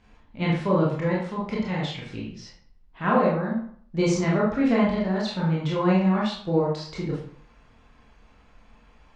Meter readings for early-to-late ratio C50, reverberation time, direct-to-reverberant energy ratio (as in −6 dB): 3.0 dB, 0.55 s, −5.5 dB